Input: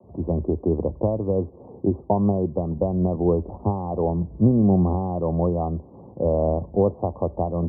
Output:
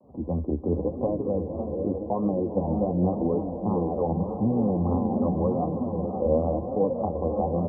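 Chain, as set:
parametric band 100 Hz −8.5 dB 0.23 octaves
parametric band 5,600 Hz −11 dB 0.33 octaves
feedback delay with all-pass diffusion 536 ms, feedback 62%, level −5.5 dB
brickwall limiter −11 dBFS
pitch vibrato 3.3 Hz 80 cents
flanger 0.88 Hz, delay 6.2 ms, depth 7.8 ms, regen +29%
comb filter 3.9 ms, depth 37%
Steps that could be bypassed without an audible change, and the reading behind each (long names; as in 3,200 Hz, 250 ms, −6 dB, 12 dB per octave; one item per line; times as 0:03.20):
parametric band 5,600 Hz: nothing at its input above 1,100 Hz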